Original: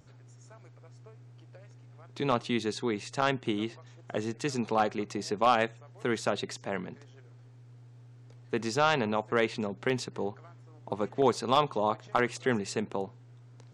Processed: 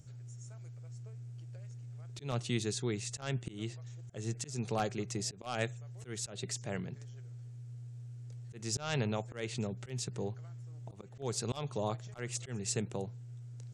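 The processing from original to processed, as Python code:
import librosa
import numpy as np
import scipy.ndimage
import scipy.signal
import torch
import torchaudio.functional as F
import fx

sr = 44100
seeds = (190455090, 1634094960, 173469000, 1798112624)

y = fx.graphic_eq_10(x, sr, hz=(125, 250, 500, 1000, 2000, 4000, 8000), db=(7, -8, -3, -12, -4, -4, 7))
y = fx.auto_swell(y, sr, attack_ms=215.0)
y = F.gain(torch.from_numpy(y), 1.0).numpy()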